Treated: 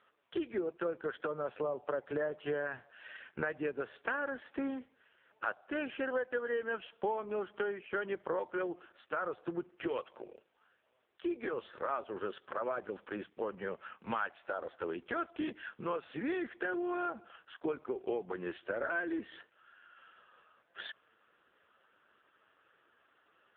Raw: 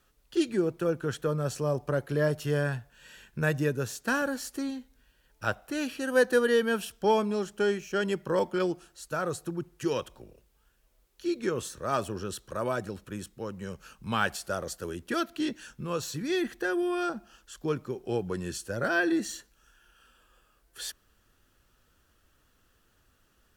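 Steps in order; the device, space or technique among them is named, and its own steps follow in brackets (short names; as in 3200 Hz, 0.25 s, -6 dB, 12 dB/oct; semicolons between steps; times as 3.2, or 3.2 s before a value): voicemail (BPF 440–2600 Hz; compressor 8:1, threshold -40 dBFS, peak gain reduction 20 dB; gain +8.5 dB; AMR-NB 5.15 kbps 8000 Hz)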